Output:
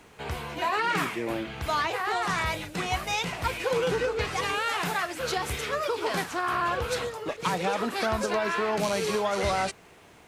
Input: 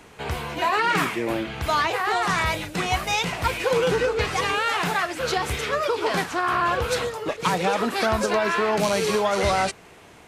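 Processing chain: bit crusher 11-bit; 4.43–6.69 s: treble shelf 8.5 kHz +6 dB; trim -5 dB

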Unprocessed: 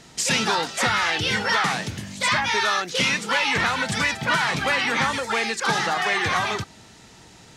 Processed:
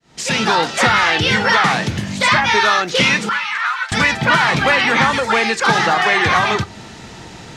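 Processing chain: fade-in on the opening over 0.61 s; treble shelf 6.4 kHz -11.5 dB; in parallel at +2 dB: compression, threshold -34 dBFS, peak gain reduction 15 dB; 3.29–3.92 s: on the sum: ladder high-pass 1.1 kHz, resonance 55%; reverberation, pre-delay 6 ms, DRR 16 dB; trim +6.5 dB

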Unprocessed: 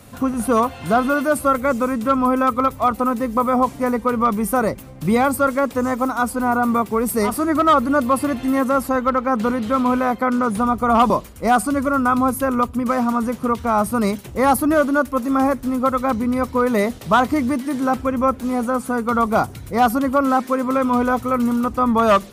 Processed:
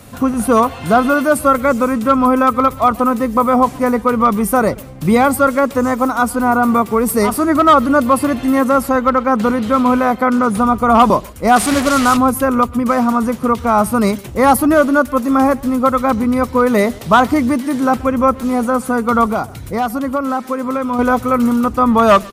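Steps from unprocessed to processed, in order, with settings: 11.56–12.17 s: one-bit delta coder 64 kbps, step -17 dBFS; 19.31–20.99 s: compression 2.5:1, threshold -23 dBFS, peak gain reduction 8.5 dB; speakerphone echo 130 ms, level -22 dB; trim +5 dB

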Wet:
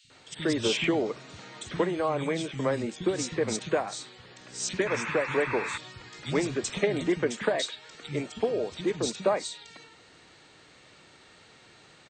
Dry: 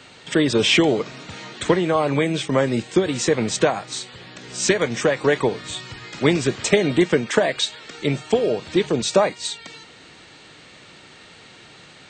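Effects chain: three bands offset in time highs, lows, mids 40/100 ms, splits 190/2900 Hz; painted sound noise, 4.86–5.78 s, 840–2700 Hz -27 dBFS; trim -8 dB

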